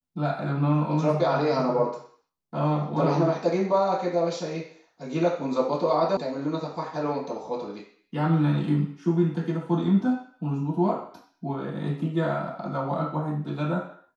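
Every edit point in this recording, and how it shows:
6.17 sound cut off

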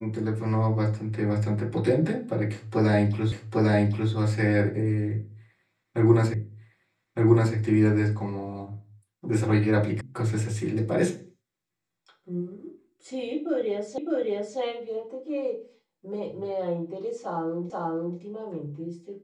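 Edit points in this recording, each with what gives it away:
3.32 repeat of the last 0.8 s
6.34 repeat of the last 1.21 s
10.01 sound cut off
13.98 repeat of the last 0.61 s
17.7 repeat of the last 0.48 s

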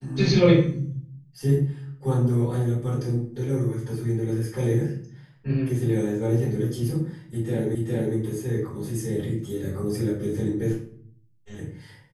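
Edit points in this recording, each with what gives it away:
7.75 repeat of the last 0.41 s

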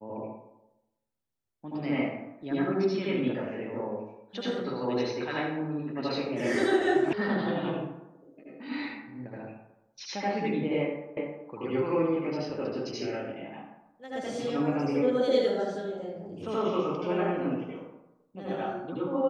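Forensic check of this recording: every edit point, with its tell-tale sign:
7.13 sound cut off
11.17 repeat of the last 0.31 s

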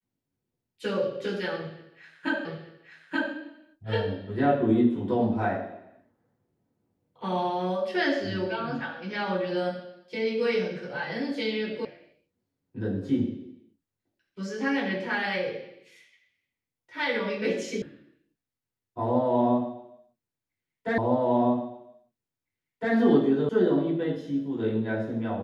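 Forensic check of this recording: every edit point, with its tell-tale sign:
2.45 repeat of the last 0.88 s
11.85 sound cut off
17.82 sound cut off
20.98 repeat of the last 1.96 s
23.49 sound cut off

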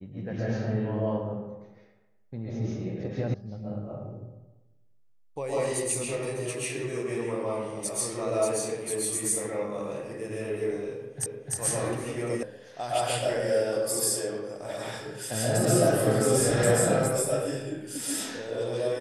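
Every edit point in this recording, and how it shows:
3.34 sound cut off
11.26 repeat of the last 0.3 s
12.43 sound cut off

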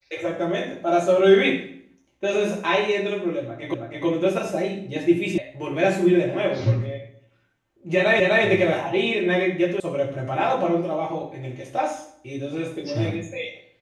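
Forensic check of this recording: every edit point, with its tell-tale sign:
3.74 repeat of the last 0.32 s
5.38 sound cut off
8.2 repeat of the last 0.25 s
9.8 sound cut off

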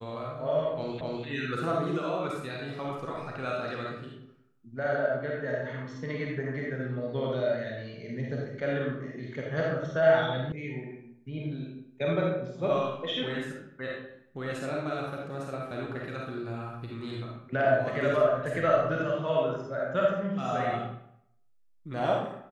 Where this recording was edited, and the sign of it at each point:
1.01 repeat of the last 0.25 s
10.52 sound cut off

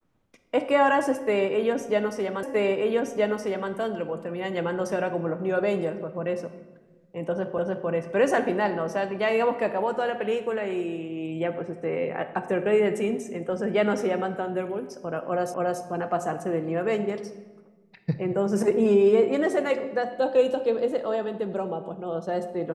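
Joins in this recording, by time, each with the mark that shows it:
2.43 repeat of the last 1.27 s
7.58 repeat of the last 0.3 s
15.54 repeat of the last 0.28 s

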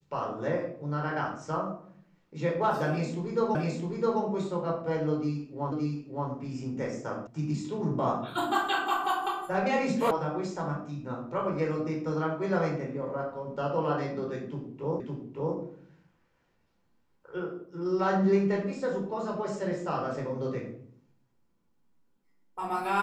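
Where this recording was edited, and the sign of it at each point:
3.55 repeat of the last 0.66 s
5.72 repeat of the last 0.57 s
7.27 sound cut off
10.11 sound cut off
15 repeat of the last 0.56 s

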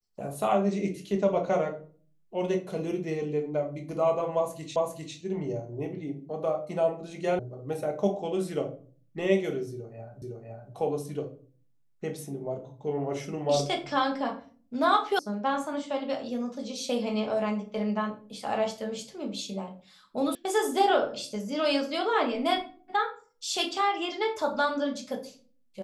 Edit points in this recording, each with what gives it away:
4.76 repeat of the last 0.4 s
7.39 sound cut off
10.22 repeat of the last 0.51 s
15.19 sound cut off
20.35 sound cut off

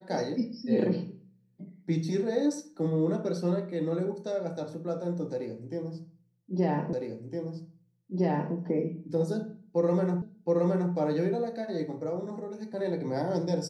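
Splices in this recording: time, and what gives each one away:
6.93 repeat of the last 1.61 s
10.22 repeat of the last 0.72 s

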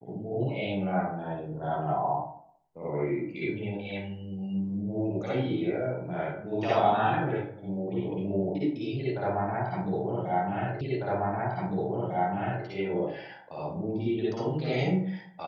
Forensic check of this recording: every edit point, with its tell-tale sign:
10.81 repeat of the last 1.85 s

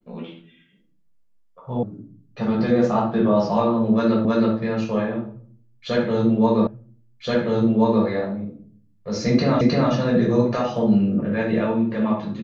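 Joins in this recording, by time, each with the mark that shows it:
1.83 sound cut off
4.25 repeat of the last 0.32 s
6.67 repeat of the last 1.38 s
9.61 repeat of the last 0.31 s

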